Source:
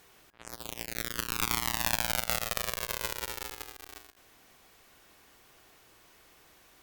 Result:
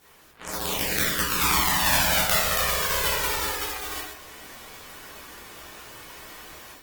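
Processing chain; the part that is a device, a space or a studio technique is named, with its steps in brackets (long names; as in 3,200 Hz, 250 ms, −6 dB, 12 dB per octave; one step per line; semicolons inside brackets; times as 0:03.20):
speakerphone in a meeting room (convolution reverb RT60 0.45 s, pre-delay 11 ms, DRR −6 dB; automatic gain control gain up to 10 dB; Opus 20 kbit/s 48,000 Hz)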